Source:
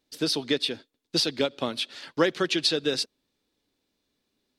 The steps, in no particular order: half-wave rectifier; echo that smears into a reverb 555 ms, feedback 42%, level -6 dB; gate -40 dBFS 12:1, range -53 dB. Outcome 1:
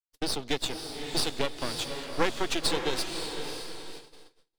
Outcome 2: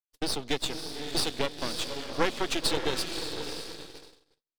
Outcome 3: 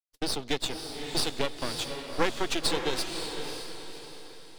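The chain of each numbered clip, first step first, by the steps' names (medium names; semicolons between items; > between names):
half-wave rectifier > echo that smears into a reverb > gate; echo that smears into a reverb > half-wave rectifier > gate; half-wave rectifier > gate > echo that smears into a reverb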